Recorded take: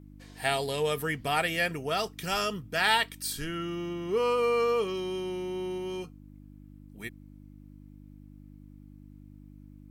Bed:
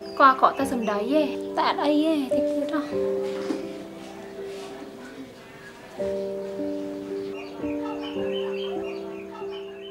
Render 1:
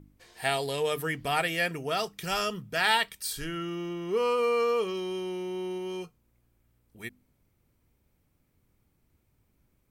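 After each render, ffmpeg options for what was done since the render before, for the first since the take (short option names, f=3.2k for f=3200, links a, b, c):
-af "bandreject=f=50:t=h:w=4,bandreject=f=100:t=h:w=4,bandreject=f=150:t=h:w=4,bandreject=f=200:t=h:w=4,bandreject=f=250:t=h:w=4,bandreject=f=300:t=h:w=4"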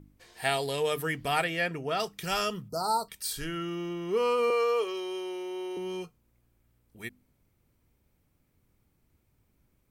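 -filter_complex "[0:a]asettb=1/sr,asplit=3[a][b][c];[a]atrim=end=1.444[d];[b]atrim=start=1.44:end=2,asetpts=PTS-STARTPTS,afade=t=in:d=0.004:c=qsin,afade=t=out:st=0.556:d=0.004:c=qsin,lowpass=f=3k:p=1[e];[c]atrim=start=1.996[f];[d][e]acrossfade=d=0.004:c1=hsin:c2=qsin[g];[g][f]acrossfade=d=0.004:c1=qsin:c2=hsin,asplit=3[h][i][j];[h]afade=t=out:st=2.68:d=0.02[k];[i]asuperstop=centerf=2400:order=20:qfactor=0.83,afade=t=in:st=2.68:d=0.02,afade=t=out:st=3.08:d=0.02[l];[j]afade=t=in:st=3.08:d=0.02[m];[k][l][m]amix=inputs=3:normalize=0,asettb=1/sr,asplit=3[n][o][p];[n]atrim=end=4.504[q];[o]atrim=start=4.5:end=5.77,asetpts=PTS-STARTPTS,afade=t=in:d=0.004:c=qsin,afade=t=out:st=1.266:d=0.004:c=qsin,highpass=f=340:w=0.5412,highpass=f=340:w=1.3066[r];[p]atrim=start=5.766[s];[q][r]acrossfade=d=0.004:c1=hsin:c2=qsin[t];[t][s]acrossfade=d=0.004:c1=qsin:c2=hsin"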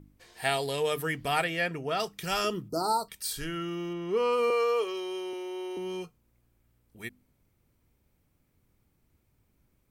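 -filter_complex "[0:a]asettb=1/sr,asplit=3[a][b][c];[a]atrim=end=2.444[d];[b]atrim=start=2.44:end=2.93,asetpts=PTS-STARTPTS,afade=t=in:d=0.004:c=qsin,afade=t=out:st=0.486:d=0.004:c=qsin,equalizer=f=330:w=3.2:g=14.5[e];[c]atrim=start=2.926[f];[d][e]acrossfade=d=0.004:c1=hsin:c2=qsin[g];[g][f]acrossfade=d=0.004:c1=qsin:c2=hsin,asettb=1/sr,asplit=3[h][i][j];[h]atrim=end=3.934[k];[i]atrim=start=3.93:end=4.33,asetpts=PTS-STARTPTS,afade=t=in:d=0.004:c=qsin,afade=t=out:st=0.396:d=0.004:c=qsin,highshelf=f=6.8k:g=-8[l];[j]atrim=start=4.326[m];[k][l]acrossfade=d=0.004:c1=hsin:c2=qsin[n];[n][m]acrossfade=d=0.004:c1=qsin:c2=hsin,asettb=1/sr,asplit=3[o][p][q];[o]atrim=end=5.334[r];[p]atrim=start=5.33:end=5.77,asetpts=PTS-STARTPTS,afade=t=in:d=0.004:c=qsin,afade=t=out:st=0.436:d=0.004:c=qsin,highpass=230[s];[q]atrim=start=5.766[t];[r][s]acrossfade=d=0.004:c1=hsin:c2=qsin[u];[u][t]acrossfade=d=0.004:c1=qsin:c2=hsin"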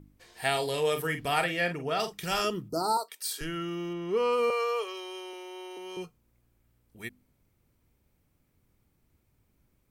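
-filter_complex "[0:a]asettb=1/sr,asplit=3[a][b][c];[a]atrim=end=0.504[d];[b]atrim=start=0.5:end=2.42,asetpts=PTS-STARTPTS,afade=t=in:d=0.004:c=qsin,afade=t=out:st=1.916:d=0.004:c=qsin,asplit=2[e][f];[f]adelay=46,volume=-9dB[g];[e][g]amix=inputs=2:normalize=0,atrim=end_sample=84672[h];[c]atrim=start=2.416[i];[d][h]acrossfade=d=0.004:c1=hsin:c2=qsin[j];[j][i]acrossfade=d=0.004:c1=qsin:c2=hsin,asettb=1/sr,asplit=3[k][l][m];[k]atrim=end=2.974[n];[l]atrim=start=2.97:end=3.41,asetpts=PTS-STARTPTS,afade=t=in:d=0.004:c=qsin,afade=t=out:st=0.436:d=0.004:c=qsin,highpass=f=380:w=0.5412,highpass=f=380:w=1.3066[o];[m]atrim=start=3.406[p];[n][o]acrossfade=d=0.004:c1=hsin:c2=qsin[q];[q][p]acrossfade=d=0.004:c1=qsin:c2=hsin,asettb=1/sr,asplit=3[r][s][t];[r]atrim=end=4.504[u];[s]atrim=start=4.5:end=5.97,asetpts=PTS-STARTPTS,afade=t=in:d=0.004:c=qsin,afade=t=out:st=1.466:d=0.004:c=qsin,highpass=530[v];[t]atrim=start=5.966[w];[u][v]acrossfade=d=0.004:c1=hsin:c2=qsin[x];[x][w]acrossfade=d=0.004:c1=qsin:c2=hsin"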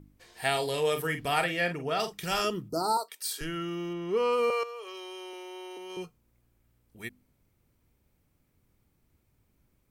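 -filter_complex "[0:a]asettb=1/sr,asplit=3[a][b][c];[a]atrim=end=4.634[d];[b]atrim=start=4.63:end=5.9,asetpts=PTS-STARTPTS,afade=t=in:d=0.004:c=qsin,afade=t=out:st=1.266:d=0.004:c=qsin,acompressor=threshold=-38dB:ratio=6:attack=3.2:release=140:knee=1:detection=peak[e];[c]atrim=start=5.896[f];[d][e]acrossfade=d=0.004:c1=hsin:c2=qsin[g];[g][f]acrossfade=d=0.004:c1=qsin:c2=hsin"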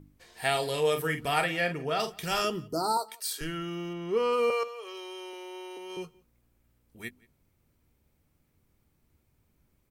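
-filter_complex "[0:a]asplit=2[a][b];[b]adelay=13,volume=-13dB[c];[a][c]amix=inputs=2:normalize=0,asplit=2[d][e];[e]adelay=174.9,volume=-25dB,highshelf=f=4k:g=-3.94[f];[d][f]amix=inputs=2:normalize=0"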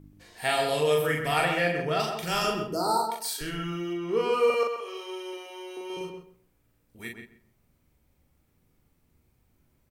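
-filter_complex "[0:a]asplit=2[a][b];[b]adelay=40,volume=-3dB[c];[a][c]amix=inputs=2:normalize=0,asplit=2[d][e];[e]adelay=130,lowpass=f=2k:p=1,volume=-5dB,asplit=2[f][g];[g]adelay=130,lowpass=f=2k:p=1,volume=0.21,asplit=2[h][i];[i]adelay=130,lowpass=f=2k:p=1,volume=0.21[j];[d][f][h][j]amix=inputs=4:normalize=0"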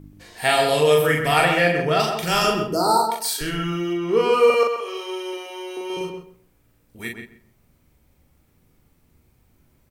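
-af "volume=7.5dB"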